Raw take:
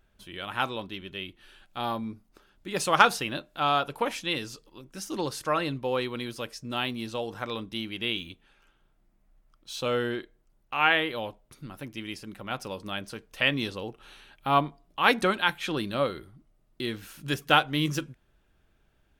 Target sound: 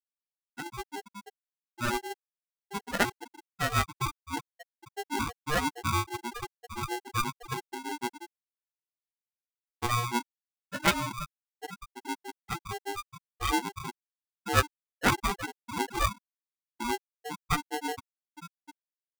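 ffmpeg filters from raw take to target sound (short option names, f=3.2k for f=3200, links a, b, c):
-filter_complex "[0:a]asuperstop=centerf=1900:order=4:qfactor=3.9,aecho=1:1:847:0.178,acrossover=split=120|1100|5500[a][b][c][d];[a]acrusher=bits=3:mix=0:aa=0.5[e];[b]dynaudnorm=f=160:g=7:m=16dB[f];[e][f][c][d]amix=inputs=4:normalize=0,acrossover=split=440[g][h];[g]aeval=exprs='val(0)*(1-1/2+1/2*cos(2*PI*6.2*n/s))':c=same[i];[h]aeval=exprs='val(0)*(1-1/2-1/2*cos(2*PI*6.2*n/s))':c=same[j];[i][j]amix=inputs=2:normalize=0,flanger=delay=0.8:depth=1.5:regen=-87:speed=0.36:shape=triangular,asettb=1/sr,asplit=3[k][l][m];[k]atrim=end=10.794[n];[l]atrim=start=10.79:end=12.07,asetpts=PTS-STARTPTS,afade=t=in:d=0.004:c=qsin,afade=t=out:st=1.276:d=0.004:c=qsin,aeval=exprs='0.376*(cos(1*acos(clip(val(0)/0.376,-1,1)))-cos(1*PI/2))+0.119*(cos(7*acos(clip(val(0)/0.376,-1,1)))-cos(7*PI/2))+0.0266*(cos(8*acos(clip(val(0)/0.376,-1,1)))-cos(8*PI/2))':c=same[o];[m]atrim=start=12.066[p];[n][o]acrossfade=d=0.004:c1=hsin:c2=qsin[q];[q][p]acrossfade=d=0.004:c1=qsin:c2=hsin,flanger=delay=15:depth=5.3:speed=0.9,afftfilt=real='re*gte(hypot(re,im),0.112)':imag='im*gte(hypot(re,im),0.112)':win_size=1024:overlap=0.75,aeval=exprs='val(0)*sgn(sin(2*PI*600*n/s))':c=same"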